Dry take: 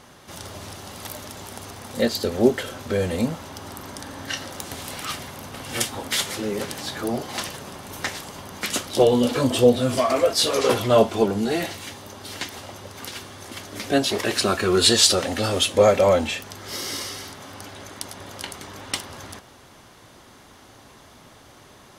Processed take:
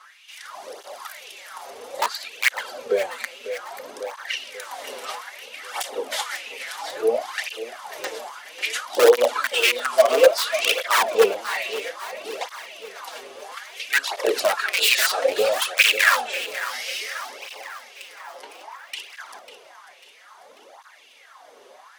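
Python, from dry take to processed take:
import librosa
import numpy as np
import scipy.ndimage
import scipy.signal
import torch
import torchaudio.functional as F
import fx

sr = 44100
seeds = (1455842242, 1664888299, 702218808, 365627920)

p1 = fx.high_shelf(x, sr, hz=9800.0, db=-4.0)
p2 = (np.mod(10.0 ** (11.5 / 20.0) * p1 + 1.0, 2.0) - 1.0) / 10.0 ** (11.5 / 20.0)
p3 = fx.cheby_ripple_highpass(p2, sr, hz=230.0, ripple_db=9, at=(17.37, 18.97))
p4 = fx.filter_lfo_highpass(p3, sr, shape='sine', hz=0.96, low_hz=450.0, high_hz=2700.0, q=6.0)
p5 = p4 + fx.echo_feedback(p4, sr, ms=544, feedback_pct=55, wet_db=-13, dry=0)
p6 = fx.flanger_cancel(p5, sr, hz=0.6, depth_ms=6.8)
y = p6 * librosa.db_to_amplitude(-1.5)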